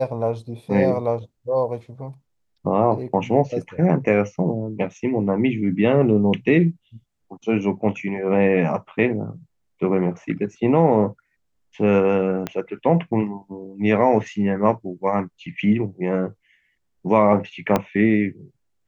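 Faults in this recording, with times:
0:12.47: click −12 dBFS
0:17.76: click −6 dBFS

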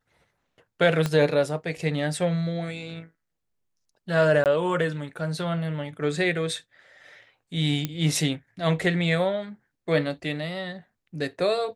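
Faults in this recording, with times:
0:01.06: click −12 dBFS
0:04.44–0:04.46: drop-out 18 ms
0:07.85: click −12 dBFS

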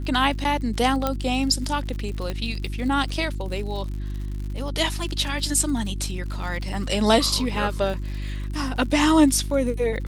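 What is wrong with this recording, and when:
surface crackle 87 per second −33 dBFS
mains hum 50 Hz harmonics 7 −29 dBFS
0:01.07: click −9 dBFS
0:02.30: click −15 dBFS

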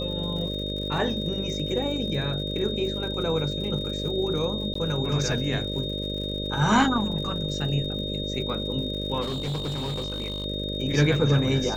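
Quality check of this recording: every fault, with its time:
mains buzz 50 Hz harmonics 12 −32 dBFS
surface crackle 100 per second −36 dBFS
whistle 3,700 Hz −32 dBFS
0:04.74–0:04.75: drop-out 14 ms
0:09.21–0:10.46: clipping −26 dBFS

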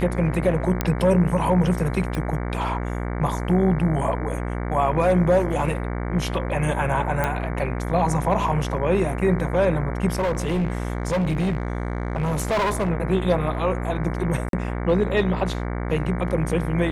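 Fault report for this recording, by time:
mains buzz 60 Hz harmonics 38 −27 dBFS
0:00.81: click −7 dBFS
0:02.15: click
0:07.24: click −10 dBFS
0:10.18–0:12.91: clipping −19 dBFS
0:14.49–0:14.53: drop-out 42 ms

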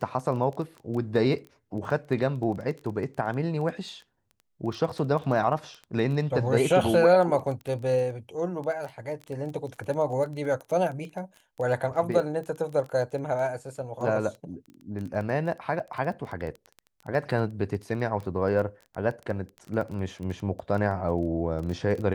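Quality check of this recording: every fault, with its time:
surface crackle 14 per second −33 dBFS

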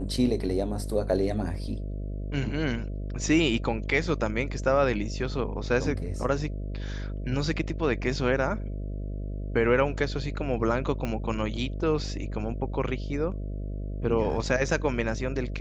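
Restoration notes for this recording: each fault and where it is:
mains buzz 50 Hz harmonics 13 −33 dBFS
0:11.05: click −18 dBFS

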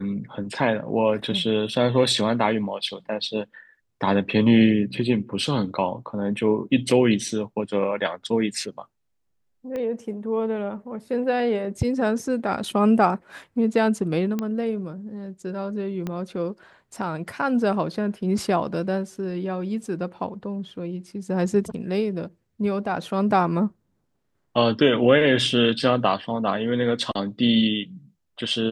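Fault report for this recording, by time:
0:09.76: click −20 dBFS
0:14.39: click −14 dBFS
0:16.07: click −17 dBFS

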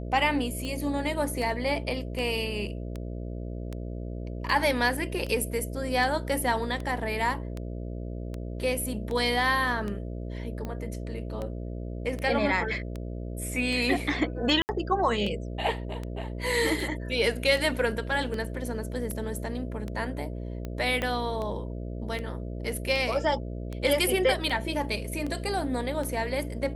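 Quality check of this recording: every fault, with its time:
mains buzz 60 Hz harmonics 11 −35 dBFS
scratch tick 78 rpm −22 dBFS
0:14.62–0:14.69: drop-out 69 ms
0:21.02: click −15 dBFS

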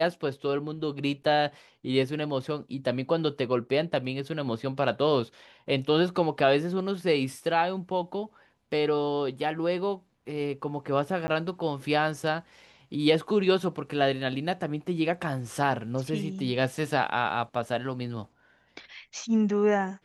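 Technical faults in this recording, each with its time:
0:11.27–0:11.28: drop-out 10 ms

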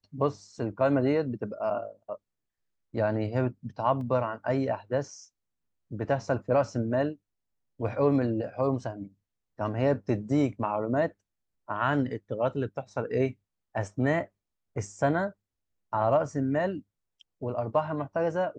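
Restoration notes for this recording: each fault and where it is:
0:04.01: drop-out 2.1 ms

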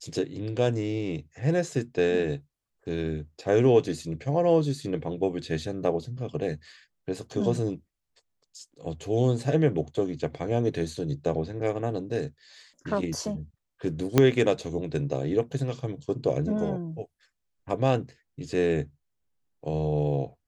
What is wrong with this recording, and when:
0:14.18: click −5 dBFS

